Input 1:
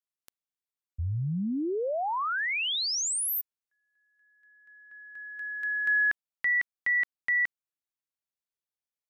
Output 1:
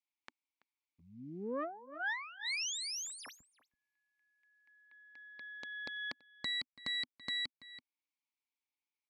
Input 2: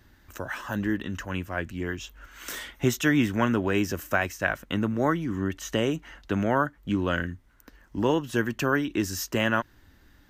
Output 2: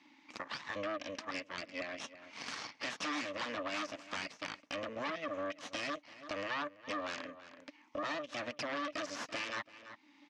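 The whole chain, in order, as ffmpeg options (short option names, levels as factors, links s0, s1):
-filter_complex "[0:a]highshelf=f=2400:g=4.5,acrossover=split=510[s0][s1];[s0]alimiter=limit=0.0841:level=0:latency=1[s2];[s2][s1]amix=inputs=2:normalize=0,crystalizer=i=9:c=0,asplit=3[s3][s4][s5];[s3]bandpass=f=300:t=q:w=8,volume=1[s6];[s4]bandpass=f=870:t=q:w=8,volume=0.501[s7];[s5]bandpass=f=2240:t=q:w=8,volume=0.355[s8];[s6][s7][s8]amix=inputs=3:normalize=0,asplit=2[s9][s10];[s10]asoftclip=type=tanh:threshold=0.0168,volume=0.501[s11];[s9][s11]amix=inputs=2:normalize=0,aeval=exprs='0.119*(cos(1*acos(clip(val(0)/0.119,-1,1)))-cos(1*PI/2))+0.0188*(cos(3*acos(clip(val(0)/0.119,-1,1)))-cos(3*PI/2))+0.0531*(cos(8*acos(clip(val(0)/0.119,-1,1)))-cos(8*PI/2))':c=same,highpass=220,equalizer=f=250:t=q:w=4:g=5,equalizer=f=380:t=q:w=4:g=-7,equalizer=f=1100:t=q:w=4:g=5,equalizer=f=1700:t=q:w=4:g=6,lowpass=f=6200:w=0.5412,lowpass=f=6200:w=1.3066,asplit=2[s12][s13];[s13]adelay=332.4,volume=0.0891,highshelf=f=4000:g=-7.48[s14];[s12][s14]amix=inputs=2:normalize=0,acompressor=threshold=0.00708:ratio=4:attack=1.1:release=404:knee=6:detection=rms,volume=2.24"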